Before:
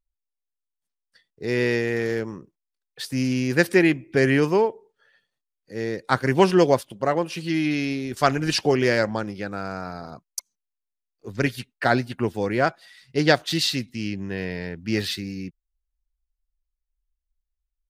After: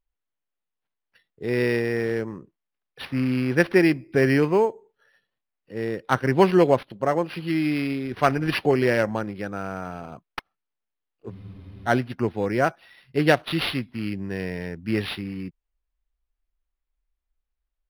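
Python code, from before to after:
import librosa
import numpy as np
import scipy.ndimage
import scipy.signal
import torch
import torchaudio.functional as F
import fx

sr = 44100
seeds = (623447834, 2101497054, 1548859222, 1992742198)

y = fx.spec_freeze(x, sr, seeds[0], at_s=11.33, hold_s=0.54)
y = np.interp(np.arange(len(y)), np.arange(len(y))[::6], y[::6])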